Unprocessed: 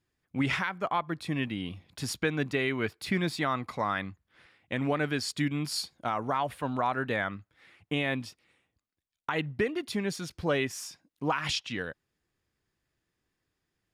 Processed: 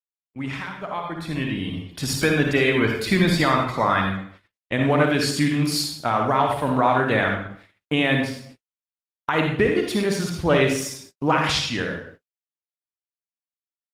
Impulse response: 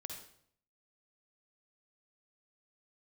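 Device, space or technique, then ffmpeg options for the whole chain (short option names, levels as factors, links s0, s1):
speakerphone in a meeting room: -filter_complex "[0:a]asplit=3[s0][s1][s2];[s0]afade=t=out:st=7.22:d=0.02[s3];[s1]equalizer=f=100:t=o:w=0.27:g=-2.5,afade=t=in:st=7.22:d=0.02,afade=t=out:st=9.34:d=0.02[s4];[s2]afade=t=in:st=9.34:d=0.02[s5];[s3][s4][s5]amix=inputs=3:normalize=0[s6];[1:a]atrim=start_sample=2205[s7];[s6][s7]afir=irnorm=-1:irlink=0,asplit=2[s8][s9];[s9]adelay=90,highpass=300,lowpass=3400,asoftclip=type=hard:threshold=0.0422,volume=0.0447[s10];[s8][s10]amix=inputs=2:normalize=0,dynaudnorm=f=150:g=21:m=3.98,agate=range=0.00126:threshold=0.00562:ratio=16:detection=peak,volume=1.19" -ar 48000 -c:a libopus -b:a 20k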